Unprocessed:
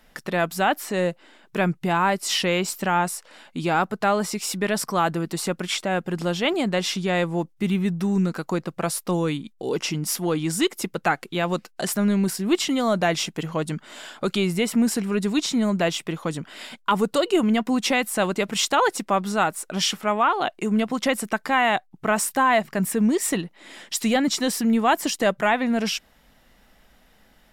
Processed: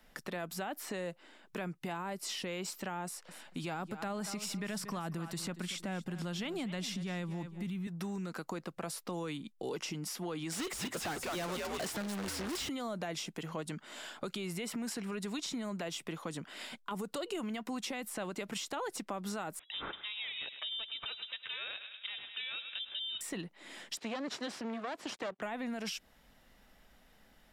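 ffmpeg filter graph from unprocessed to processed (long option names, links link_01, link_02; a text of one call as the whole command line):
ffmpeg -i in.wav -filter_complex "[0:a]asettb=1/sr,asplit=3[link_01][link_02][link_03];[link_01]atrim=end=3.054[link_04];[link_02]atrim=start=3.05:end=7.87,asetpts=PTS-STARTPTS,afade=type=in:duration=0.004:curve=qsin,afade=type=out:start_time=4.816:duration=0.004:curve=qsin,asubboost=boost=7:cutoff=200,aecho=1:1:233|466:0.141|0.0353,atrim=end_sample=212562[link_05];[link_03]atrim=start=7.866[link_06];[link_04][link_05]acrossfade=duration=0.004:curve1=hsin:curve2=qsin[link_07];[link_07][link_06]acrossfade=duration=0.004:curve1=qsin:curve2=hsin,asettb=1/sr,asplit=3[link_08][link_09][link_10];[link_08]atrim=end=10.524[link_11];[link_09]atrim=start=10.52:end=12.69,asetpts=PTS-STARTPTS,afade=type=in:duration=0.004:curve=qsin,afade=type=out:start_time=2.166:duration=0.004:curve=qsin,asplit=5[link_12][link_13][link_14][link_15][link_16];[link_13]adelay=209,afreqshift=-120,volume=-8dB[link_17];[link_14]adelay=418,afreqshift=-240,volume=-18.2dB[link_18];[link_15]adelay=627,afreqshift=-360,volume=-28.3dB[link_19];[link_16]adelay=836,afreqshift=-480,volume=-38.5dB[link_20];[link_12][link_17][link_18][link_19][link_20]amix=inputs=5:normalize=0,atrim=end_sample=95697,asoftclip=type=hard:threshold=-21.5dB,asplit=2[link_21][link_22];[link_22]highpass=frequency=720:poles=1,volume=29dB,asoftclip=type=tanh:threshold=-21dB[link_23];[link_21][link_23]amix=inputs=2:normalize=0,lowpass=frequency=7000:poles=1,volume=-6dB[link_24];[link_10]atrim=start=12.686[link_25];[link_11][link_24]acrossfade=duration=0.004:curve1=hsin:curve2=qsin[link_26];[link_26][link_25]acrossfade=duration=0.004:curve1=qsin:curve2=hsin,asettb=1/sr,asplit=3[link_27][link_28][link_29];[link_27]atrim=end=19.594[link_30];[link_28]atrim=start=19.59:end=23.21,asetpts=PTS-STARTPTS,afade=type=in:duration=0.004:curve=qsin,afade=type=out:start_time=3.616:duration=0.004:curve=qsin,aeval=exprs='val(0)*sin(2*PI*550*n/s)':channel_layout=same,asplit=2[link_31][link_32];[link_32]adelay=102,lowpass=frequency=3000:poles=1,volume=-15dB,asplit=2[link_33][link_34];[link_34]adelay=102,lowpass=frequency=3000:poles=1,volume=0.55,asplit=2[link_35][link_36];[link_36]adelay=102,lowpass=frequency=3000:poles=1,volume=0.55,asplit=2[link_37][link_38];[link_38]adelay=102,lowpass=frequency=3000:poles=1,volume=0.55,asplit=2[link_39][link_40];[link_40]adelay=102,lowpass=frequency=3000:poles=1,volume=0.55[link_41];[link_31][link_33][link_35][link_37][link_39][link_41]amix=inputs=6:normalize=0,atrim=end_sample=159642,lowpass=frequency=3300:width_type=q:width=0.5098,lowpass=frequency=3300:width_type=q:width=0.6013,lowpass=frequency=3300:width_type=q:width=0.9,lowpass=frequency=3300:width_type=q:width=2.563,afreqshift=-3900[link_42];[link_29]atrim=start=23.206[link_43];[link_30][link_42]acrossfade=duration=0.004:curve1=hsin:curve2=qsin[link_44];[link_44][link_43]acrossfade=duration=0.004:curve1=qsin:curve2=hsin,asettb=1/sr,asplit=3[link_45][link_46][link_47];[link_45]atrim=end=23.974[link_48];[link_46]atrim=start=23.97:end=25.42,asetpts=PTS-STARTPTS,afade=type=in:duration=0.004:curve=qsin,afade=type=out:start_time=1.446:duration=0.004:curve=qsin,aeval=exprs='max(val(0),0)':channel_layout=same,highpass=220,lowpass=4600[link_49];[link_47]atrim=start=25.416[link_50];[link_48][link_49]acrossfade=duration=0.004:curve1=hsin:curve2=qsin[link_51];[link_51][link_50]acrossfade=duration=0.004:curve1=qsin:curve2=hsin,alimiter=limit=-18.5dB:level=0:latency=1:release=82,acrossover=split=160|620|5800[link_52][link_53][link_54][link_55];[link_52]acompressor=threshold=-48dB:ratio=4[link_56];[link_53]acompressor=threshold=-33dB:ratio=4[link_57];[link_54]acompressor=threshold=-34dB:ratio=4[link_58];[link_55]acompressor=threshold=-39dB:ratio=4[link_59];[link_56][link_57][link_58][link_59]amix=inputs=4:normalize=0,volume=-6.5dB" out.wav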